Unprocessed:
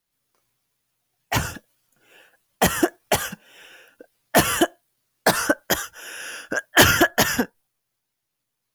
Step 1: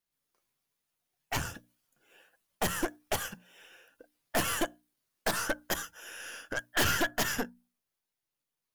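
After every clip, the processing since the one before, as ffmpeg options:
-af "aeval=exprs='(tanh(7.94*val(0)+0.65)-tanh(0.65))/7.94':c=same,bandreject=f=60:t=h:w=6,bandreject=f=120:t=h:w=6,bandreject=f=180:t=h:w=6,bandreject=f=240:t=h:w=6,bandreject=f=300:t=h:w=6,volume=0.531"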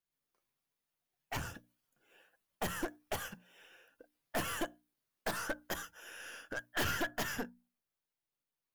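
-filter_complex "[0:a]equalizer=f=8000:t=o:w=2.1:g=-4,asplit=2[s0][s1];[s1]aeval=exprs='0.0188*(abs(mod(val(0)/0.0188+3,4)-2)-1)':c=same,volume=0.398[s2];[s0][s2]amix=inputs=2:normalize=0,volume=0.473"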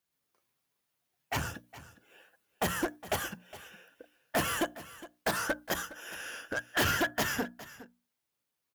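-af "highpass=49,aecho=1:1:412:0.141,volume=2.11"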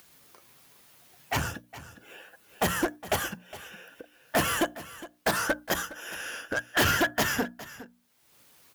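-af "acompressor=mode=upward:threshold=0.00631:ratio=2.5,volume=1.68"

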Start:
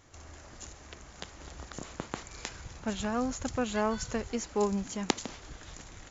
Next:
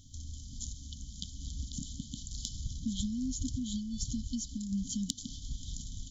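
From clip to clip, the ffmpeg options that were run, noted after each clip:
-af "acompressor=threshold=0.0178:ratio=4,lowshelf=f=61:g=7.5,afftfilt=real='re*(1-between(b*sr/4096,280,3000))':imag='im*(1-between(b*sr/4096,280,3000))':win_size=4096:overlap=0.75,volume=1.68"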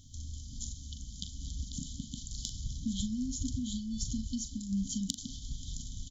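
-filter_complex "[0:a]asplit=2[s0][s1];[s1]adelay=41,volume=0.316[s2];[s0][s2]amix=inputs=2:normalize=0"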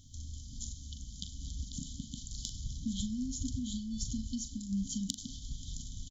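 -af "aecho=1:1:100:0.0794,volume=0.841"

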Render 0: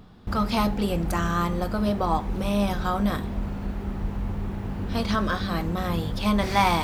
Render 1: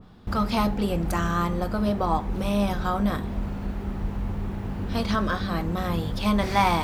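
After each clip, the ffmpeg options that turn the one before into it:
-af "adynamicequalizer=threshold=0.0141:dfrequency=2200:dqfactor=0.7:tfrequency=2200:tqfactor=0.7:attack=5:release=100:ratio=0.375:range=2:mode=cutabove:tftype=highshelf"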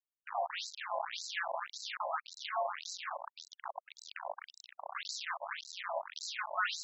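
-af "acrusher=bits=3:mix=0:aa=0.000001,aeval=exprs='val(0)*sin(2*PI*490*n/s)':c=same,afftfilt=real='re*between(b*sr/1024,750*pow(5600/750,0.5+0.5*sin(2*PI*1.8*pts/sr))/1.41,750*pow(5600/750,0.5+0.5*sin(2*PI*1.8*pts/sr))*1.41)':imag='im*between(b*sr/1024,750*pow(5600/750,0.5+0.5*sin(2*PI*1.8*pts/sr))/1.41,750*pow(5600/750,0.5+0.5*sin(2*PI*1.8*pts/sr))*1.41)':win_size=1024:overlap=0.75,volume=0.596"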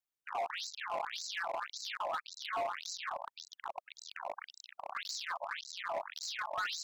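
-filter_complex "[0:a]acrossover=split=1500|3900[s0][s1][s2];[s1]alimiter=level_in=4.22:limit=0.0631:level=0:latency=1:release=36,volume=0.237[s3];[s0][s3][s2]amix=inputs=3:normalize=0,asoftclip=type=hard:threshold=0.0224,volume=1.19"

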